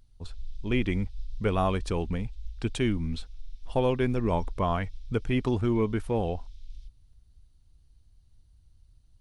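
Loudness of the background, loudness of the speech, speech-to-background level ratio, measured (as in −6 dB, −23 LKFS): −46.5 LKFS, −29.5 LKFS, 17.0 dB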